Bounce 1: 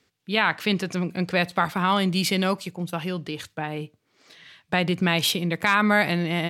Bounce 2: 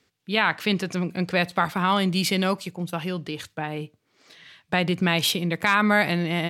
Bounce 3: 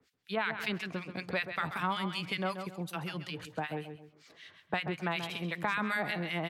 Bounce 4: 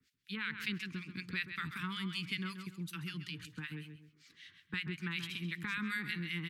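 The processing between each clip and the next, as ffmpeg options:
-af anull
-filter_complex "[0:a]acrossover=split=1400[a][b];[a]aeval=exprs='val(0)*(1-1/2+1/2*cos(2*PI*5.3*n/s))':c=same[c];[b]aeval=exprs='val(0)*(1-1/2-1/2*cos(2*PI*5.3*n/s))':c=same[d];[c][d]amix=inputs=2:normalize=0,asplit=2[e][f];[f]adelay=132,lowpass=f=4.3k:p=1,volume=-10.5dB,asplit=2[g][h];[h]adelay=132,lowpass=f=4.3k:p=1,volume=0.28,asplit=2[i][j];[j]adelay=132,lowpass=f=4.3k:p=1,volume=0.28[k];[e][g][i][k]amix=inputs=4:normalize=0,acrossover=split=110|620|2500[l][m][n][o];[l]acompressor=threshold=-55dB:ratio=4[p];[m]acompressor=threshold=-38dB:ratio=4[q];[n]acompressor=threshold=-31dB:ratio=4[r];[o]acompressor=threshold=-45dB:ratio=4[s];[p][q][r][s]amix=inputs=4:normalize=0"
-af "asuperstop=centerf=660:order=4:qfactor=0.5,volume=-2dB"

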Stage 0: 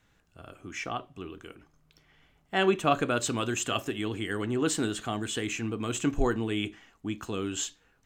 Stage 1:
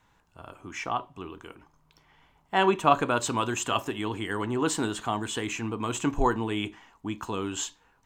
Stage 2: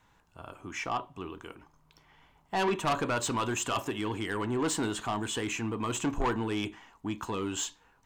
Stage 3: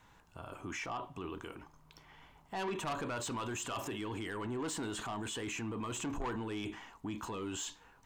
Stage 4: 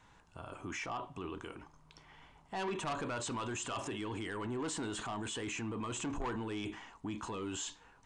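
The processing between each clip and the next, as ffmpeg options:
-af "equalizer=f=950:t=o:w=0.45:g=14"
-af "asoftclip=type=tanh:threshold=-23.5dB"
-af "alimiter=level_in=11.5dB:limit=-24dB:level=0:latency=1:release=24,volume=-11.5dB,volume=2.5dB"
-af "aresample=22050,aresample=44100"

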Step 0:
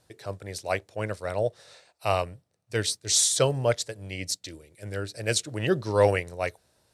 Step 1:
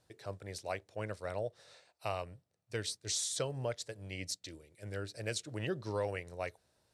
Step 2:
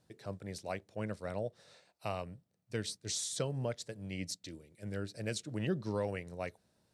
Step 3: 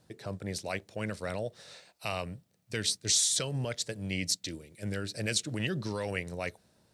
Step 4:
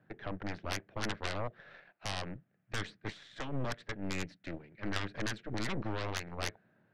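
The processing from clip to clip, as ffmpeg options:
-af "highshelf=f=12k:g=-8,acompressor=threshold=-27dB:ratio=3,volume=-7dB"
-af "equalizer=f=200:t=o:w=1.1:g=11,volume=-2dB"
-filter_complex "[0:a]acrossover=split=1700[a][b];[a]alimiter=level_in=9.5dB:limit=-24dB:level=0:latency=1,volume=-9.5dB[c];[b]dynaudnorm=f=110:g=11:m=4.5dB[d];[c][d]amix=inputs=2:normalize=0,volume=7dB"
-af "alimiter=limit=-20.5dB:level=0:latency=1:release=238,highpass=f=110:w=0.5412,highpass=f=110:w=1.3066,equalizer=f=490:t=q:w=4:g=-5,equalizer=f=950:t=q:w=4:g=-5,equalizer=f=1.6k:t=q:w=4:g=8,lowpass=f=2.3k:w=0.5412,lowpass=f=2.3k:w=1.3066,aeval=exprs='0.0891*(cos(1*acos(clip(val(0)/0.0891,-1,1)))-cos(1*PI/2))+0.0447*(cos(3*acos(clip(val(0)/0.0891,-1,1)))-cos(3*PI/2))+0.00891*(cos(8*acos(clip(val(0)/0.0891,-1,1)))-cos(8*PI/2))':c=same,volume=5dB"

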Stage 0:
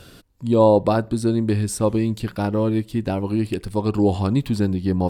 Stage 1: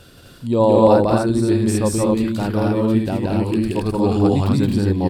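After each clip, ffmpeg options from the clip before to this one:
-af "aecho=1:1:174.9|224.5|256.6:0.891|0.631|0.794,volume=-1dB"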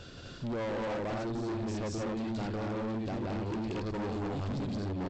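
-af "acompressor=threshold=-27dB:ratio=3,aresample=16000,asoftclip=type=hard:threshold=-30.5dB,aresample=44100,volume=-2dB"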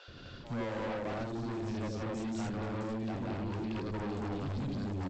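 -filter_complex "[0:a]acrossover=split=520|5500[a][b][c];[a]adelay=80[d];[c]adelay=460[e];[d][b][e]amix=inputs=3:normalize=0,volume=-1dB"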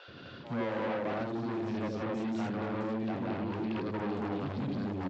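-af "highpass=140,lowpass=3.6k,volume=3.5dB"

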